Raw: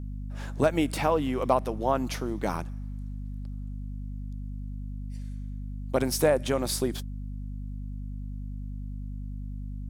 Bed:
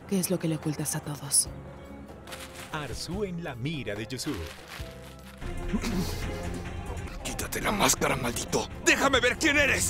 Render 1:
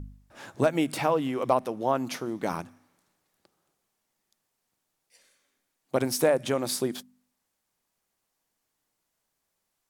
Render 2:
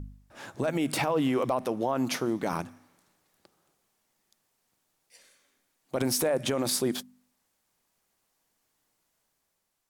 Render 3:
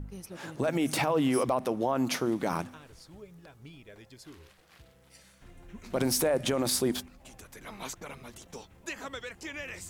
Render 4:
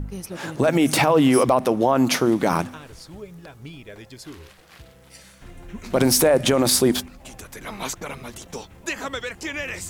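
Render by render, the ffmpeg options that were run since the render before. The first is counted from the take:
-af "bandreject=f=50:t=h:w=4,bandreject=f=100:t=h:w=4,bandreject=f=150:t=h:w=4,bandreject=f=200:t=h:w=4,bandreject=f=250:t=h:w=4"
-af "alimiter=limit=-21.5dB:level=0:latency=1:release=21,dynaudnorm=f=140:g=9:m=4dB"
-filter_complex "[1:a]volume=-17dB[a];[0:a][a]amix=inputs=2:normalize=0"
-af "volume=10dB"

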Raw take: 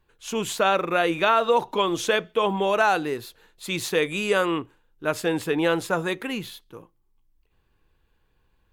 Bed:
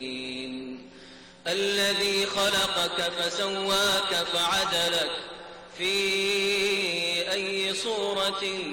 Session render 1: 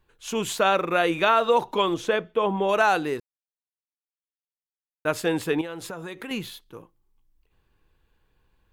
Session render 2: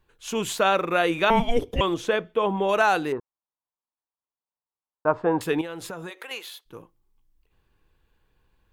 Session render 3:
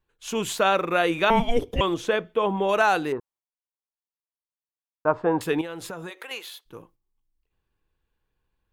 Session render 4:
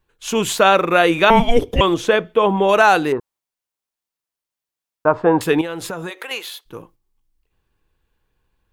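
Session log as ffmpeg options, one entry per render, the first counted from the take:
-filter_complex "[0:a]asettb=1/sr,asplit=3[a][b][c];[a]atrim=end=1.944[d];[b]atrim=start=1.94:end=2.69,asetpts=PTS-STARTPTS,afade=t=in:d=0.004:c=qsin,afade=t=out:st=0.746:d=0.004:c=qsin,highshelf=f=2.6k:g=-11[e];[c]atrim=start=2.686[f];[d][e]acrossfade=d=0.004:c1=hsin:c2=qsin[g];[g][f]acrossfade=d=0.004:c1=qsin:c2=hsin,asettb=1/sr,asplit=3[h][i][j];[h]atrim=end=5.614[k];[i]atrim=start=5.61:end=6.31,asetpts=PTS-STARTPTS,afade=t=in:d=0.004:c=qsin,afade=t=out:st=0.696:d=0.004:c=qsin,acompressor=threshold=-32dB:ratio=6:attack=3.2:release=140:knee=1:detection=peak[l];[j]atrim=start=6.306[m];[k][l]acrossfade=d=0.004:c1=hsin:c2=qsin[n];[n][m]acrossfade=d=0.004:c1=qsin:c2=hsin,asplit=3[o][p][q];[o]atrim=end=3.2,asetpts=PTS-STARTPTS,afade=t=out:st=3.196:d=0.004:c=hsin[r];[p]atrim=start=3.2:end=5.05,asetpts=PTS-STARTPTS,volume=0[s];[q]atrim=start=5.05,asetpts=PTS-STARTPTS,afade=t=in:d=0.004:c=hsin[t];[r][s][t]concat=n=3:v=0:a=1"
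-filter_complex "[0:a]asettb=1/sr,asplit=3[a][b][c];[a]atrim=end=1.304[d];[b]atrim=start=1.3:end=1.81,asetpts=PTS-STARTPTS,afade=t=in:d=0.004:c=qsin,afade=t=out:st=0.506:d=0.004:c=qsin,afreqshift=-470[e];[c]atrim=start=1.806[f];[d][e]acrossfade=d=0.004:c1=hsin:c2=qsin[g];[g][f]acrossfade=d=0.004:c1=qsin:c2=hsin,asettb=1/sr,asplit=3[h][i][j];[h]atrim=end=3.124[k];[i]atrim=start=3.12:end=5.41,asetpts=PTS-STARTPTS,afade=t=in:d=0.004:c=qsin,afade=t=out:st=2.286:d=0.004:c=qsin,lowpass=f=1k:t=q:w=3.2[l];[j]atrim=start=5.406[m];[k][l]acrossfade=d=0.004:c1=hsin:c2=qsin[n];[n][m]acrossfade=d=0.004:c1=qsin:c2=hsin,asplit=3[o][p][q];[o]afade=t=out:st=6.09:d=0.02[r];[p]highpass=f=480:w=0.5412,highpass=f=480:w=1.3066,afade=t=in:st=6.09:d=0.02,afade=t=out:st=6.65:d=0.02[s];[q]afade=t=in:st=6.65:d=0.02[t];[r][s][t]amix=inputs=3:normalize=0"
-af "agate=range=-10dB:threshold=-57dB:ratio=16:detection=peak"
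-af "volume=8dB,alimiter=limit=-1dB:level=0:latency=1"

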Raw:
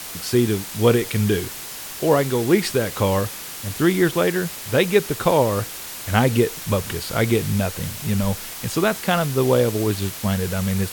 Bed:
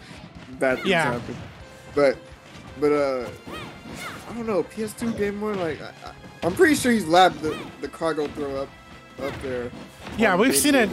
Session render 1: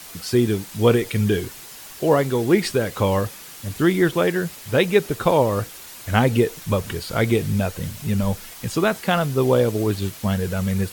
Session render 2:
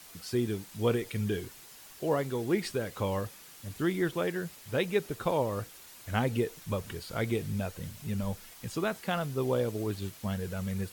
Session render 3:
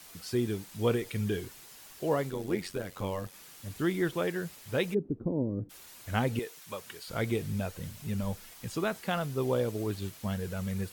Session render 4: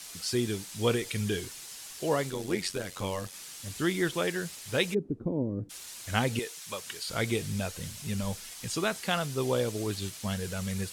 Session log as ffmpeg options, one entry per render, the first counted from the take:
-af "afftdn=nr=7:nf=-34"
-af "volume=-11.5dB"
-filter_complex "[0:a]asplit=3[a][b][c];[a]afade=t=out:st=2.29:d=0.02[d];[b]tremolo=f=92:d=0.71,afade=t=in:st=2.29:d=0.02,afade=t=out:st=3.33:d=0.02[e];[c]afade=t=in:st=3.33:d=0.02[f];[d][e][f]amix=inputs=3:normalize=0,asplit=3[g][h][i];[g]afade=t=out:st=4.93:d=0.02[j];[h]lowpass=f=280:t=q:w=2.8,afade=t=in:st=4.93:d=0.02,afade=t=out:st=5.69:d=0.02[k];[i]afade=t=in:st=5.69:d=0.02[l];[j][k][l]amix=inputs=3:normalize=0,asettb=1/sr,asplit=3[m][n][o];[m]atrim=end=6.394[p];[n]atrim=start=6.39:end=7.08,asetpts=PTS-STARTPTS,afade=t=in:d=0.004:c=qsin,afade=t=out:st=0.686:d=0.004:c=qsin,highpass=f=910:p=1[q];[o]atrim=start=7.076[r];[p][q]acrossfade=d=0.004:c1=hsin:c2=qsin[s];[s][r]acrossfade=d=0.004:c1=qsin:c2=hsin"
-af "lowpass=12k,equalizer=f=7.2k:w=0.31:g=10.5"

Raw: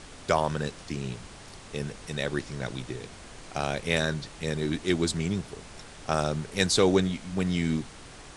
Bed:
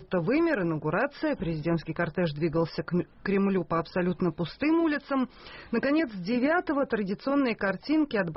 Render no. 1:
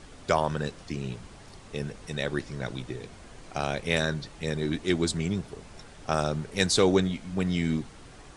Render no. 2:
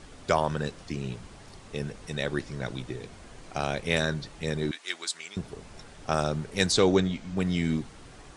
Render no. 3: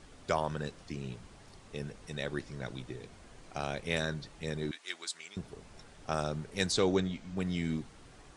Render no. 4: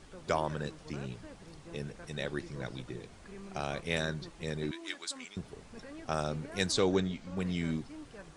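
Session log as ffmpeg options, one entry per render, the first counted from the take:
-af "afftdn=nr=6:nf=-47"
-filter_complex "[0:a]asettb=1/sr,asplit=3[a][b][c];[a]atrim=end=4.714[d];[b]atrim=start=4.71:end=5.37,asetpts=PTS-STARTPTS,afade=t=in:d=0.004:c=qsin,afade=t=out:st=0.656:d=0.004:c=qsin,highpass=1.2k[e];[c]atrim=start=5.366[f];[d][e]acrossfade=d=0.004:c1=hsin:c2=qsin[g];[g][f]acrossfade=d=0.004:c1=qsin:c2=hsin,asettb=1/sr,asplit=3[h][i][j];[h]atrim=end=6.724[k];[i]atrim=start=6.72:end=7.37,asetpts=PTS-STARTPTS,afade=t=in:d=0.004:c=qsin,afade=t=out:st=0.646:d=0.004:c=qsin,lowpass=f=8k:w=0.5412,lowpass=f=8k:w=1.3066[l];[j]atrim=start=7.366[m];[k][l]acrossfade=d=0.004:c1=hsin:c2=qsin[n];[n][m]acrossfade=d=0.004:c1=qsin:c2=hsin"
-af "volume=-6.5dB"
-filter_complex "[1:a]volume=-23dB[a];[0:a][a]amix=inputs=2:normalize=0"

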